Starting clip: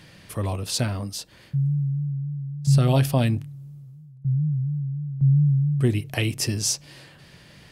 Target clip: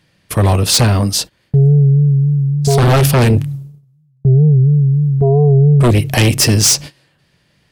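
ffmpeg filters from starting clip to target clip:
-filter_complex "[0:a]agate=range=0.0501:threshold=0.0112:ratio=16:detection=peak,asplit=2[s0][s1];[s1]aeval=exprs='0.376*sin(PI/2*4.47*val(0)/0.376)':c=same,volume=0.422[s2];[s0][s2]amix=inputs=2:normalize=0,volume=1.88"

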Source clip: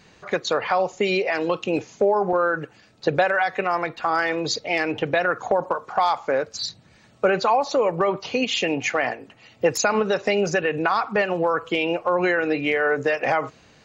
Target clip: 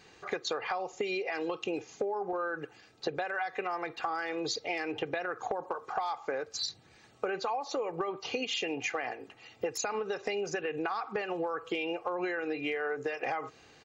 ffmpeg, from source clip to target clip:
-af "lowshelf=f=110:g=-9,aecho=1:1:2.5:0.44,acompressor=threshold=0.0501:ratio=10,volume=0.631"

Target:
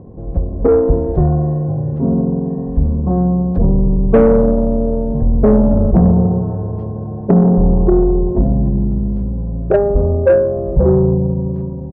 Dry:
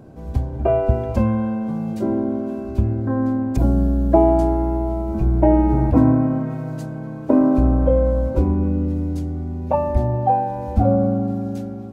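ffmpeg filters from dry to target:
-af "asetrate=30296,aresample=44100,atempo=1.45565,lowpass=f=790:t=q:w=1.6,acontrast=86,volume=0.891"

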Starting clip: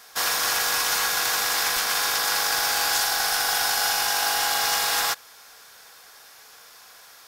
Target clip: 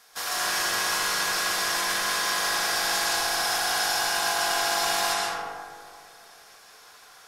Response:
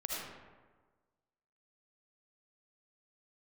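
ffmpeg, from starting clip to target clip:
-filter_complex "[1:a]atrim=start_sample=2205,asetrate=24255,aresample=44100[s0];[0:a][s0]afir=irnorm=-1:irlink=0,volume=0.422"

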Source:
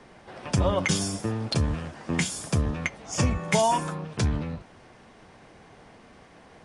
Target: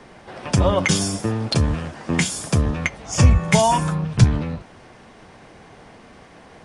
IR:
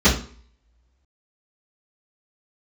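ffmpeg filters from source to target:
-filter_complex "[0:a]asettb=1/sr,asplit=3[s0][s1][s2];[s0]atrim=end=2.674[s3];[s1]atrim=start=2.67:end=4.24,asetpts=PTS-STARTPTS,afade=t=in:d=0.004:c=qsin,afade=t=out:st=1.566:d=0.004:c=qsin,asubboost=boost=10:cutoff=150[s4];[s2]atrim=start=4.236[s5];[s3][s4]acrossfade=d=0.004:c1=hsin:c2=qsin[s6];[s6][s5]acrossfade=d=0.004:c1=qsin:c2=hsin,volume=2"

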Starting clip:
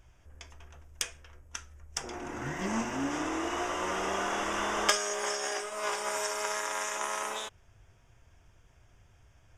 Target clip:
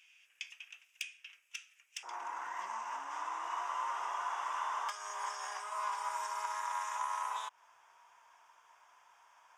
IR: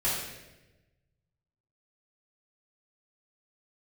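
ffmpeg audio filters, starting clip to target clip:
-af "acompressor=threshold=0.00708:ratio=6,asoftclip=type=tanh:threshold=0.0251,asetnsamples=n=441:p=0,asendcmd='2.03 highpass f 980',highpass=f=2600:t=q:w=6"

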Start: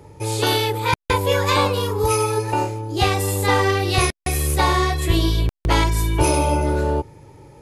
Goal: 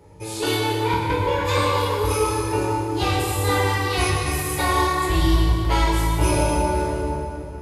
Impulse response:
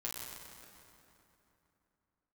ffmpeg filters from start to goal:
-filter_complex "[0:a]asettb=1/sr,asplit=3[s0][s1][s2];[s0]atrim=end=0.554[s3];[s1]atrim=start=0.55:end=1.45,asetpts=PTS-STARTPTS,afade=t=in:d=0.004:c=qsin,afade=t=out:st=0.896:d=0.004:c=qsin,aemphasis=mode=reproduction:type=75fm[s4];[s2]atrim=start=1.446[s5];[s3][s4]acrossfade=d=0.004:c1=hsin:c2=qsin[s6];[s6][s5]acrossfade=d=0.004:c1=qsin:c2=hsin[s7];[1:a]atrim=start_sample=2205[s8];[s7][s8]afir=irnorm=-1:irlink=0,volume=0.75"

